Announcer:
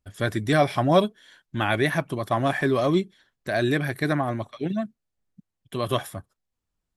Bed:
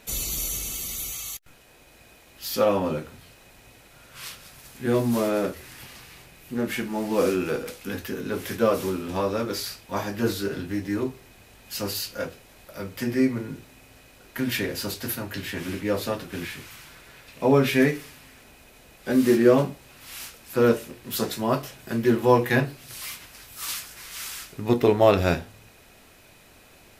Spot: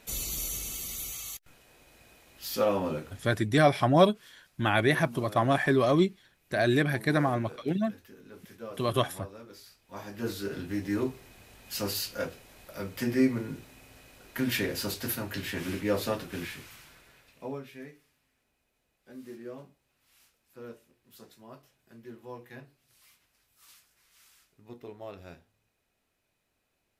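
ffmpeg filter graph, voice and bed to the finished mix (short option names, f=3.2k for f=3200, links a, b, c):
-filter_complex "[0:a]adelay=3050,volume=-1.5dB[a];[1:a]volume=13dB,afade=t=out:st=3.3:d=0.21:silence=0.16788,afade=t=in:st=9.78:d=1.17:silence=0.125893,afade=t=out:st=16.17:d=1.48:silence=0.0707946[b];[a][b]amix=inputs=2:normalize=0"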